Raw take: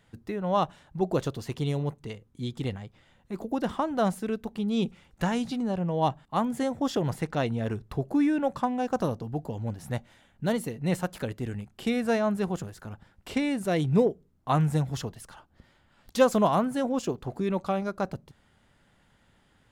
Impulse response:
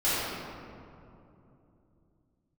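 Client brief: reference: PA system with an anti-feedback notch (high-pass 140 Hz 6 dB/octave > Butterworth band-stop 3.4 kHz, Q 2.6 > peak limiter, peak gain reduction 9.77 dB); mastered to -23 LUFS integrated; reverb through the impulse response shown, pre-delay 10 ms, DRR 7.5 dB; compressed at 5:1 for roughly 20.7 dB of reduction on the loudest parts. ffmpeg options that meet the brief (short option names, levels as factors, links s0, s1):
-filter_complex "[0:a]acompressor=threshold=0.01:ratio=5,asplit=2[s0][s1];[1:a]atrim=start_sample=2205,adelay=10[s2];[s1][s2]afir=irnorm=-1:irlink=0,volume=0.0891[s3];[s0][s3]amix=inputs=2:normalize=0,highpass=f=140:p=1,asuperstop=centerf=3400:order=8:qfactor=2.6,volume=15,alimiter=limit=0.224:level=0:latency=1"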